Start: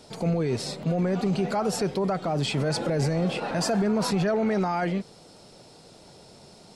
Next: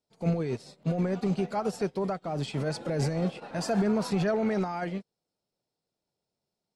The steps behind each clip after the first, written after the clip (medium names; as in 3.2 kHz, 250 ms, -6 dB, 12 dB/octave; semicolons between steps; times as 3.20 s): upward expansion 2.5:1, over -46 dBFS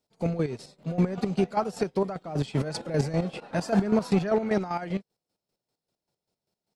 square tremolo 5.1 Hz, depth 65%, duty 35%; trim +5.5 dB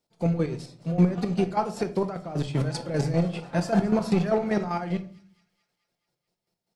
feedback echo behind a high-pass 217 ms, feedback 60%, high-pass 3.2 kHz, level -18.5 dB; reverberation RT60 0.45 s, pre-delay 6 ms, DRR 7.5 dB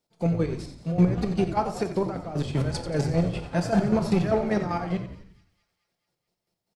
frequency-shifting echo 89 ms, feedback 51%, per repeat -57 Hz, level -11 dB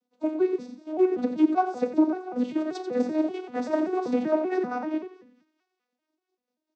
vocoder on a broken chord major triad, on B3, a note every 193 ms